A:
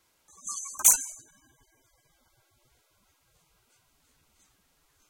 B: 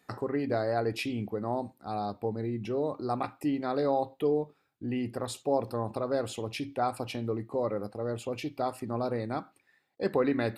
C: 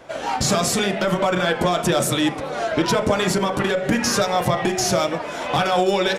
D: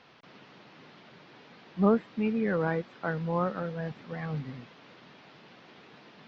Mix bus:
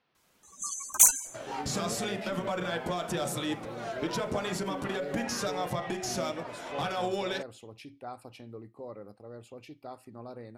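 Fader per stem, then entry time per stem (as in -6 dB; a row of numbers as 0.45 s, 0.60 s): 0.0 dB, -12.5 dB, -13.0 dB, -18.5 dB; 0.15 s, 1.25 s, 1.25 s, 0.00 s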